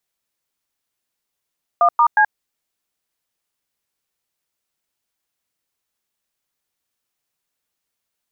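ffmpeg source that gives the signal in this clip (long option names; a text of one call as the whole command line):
ffmpeg -f lavfi -i "aevalsrc='0.237*clip(min(mod(t,0.18),0.078-mod(t,0.18))/0.002,0,1)*(eq(floor(t/0.18),0)*(sin(2*PI*697*mod(t,0.18))+sin(2*PI*1209*mod(t,0.18)))+eq(floor(t/0.18),1)*(sin(2*PI*941*mod(t,0.18))+sin(2*PI*1209*mod(t,0.18)))+eq(floor(t/0.18),2)*(sin(2*PI*852*mod(t,0.18))+sin(2*PI*1633*mod(t,0.18))))':duration=0.54:sample_rate=44100" out.wav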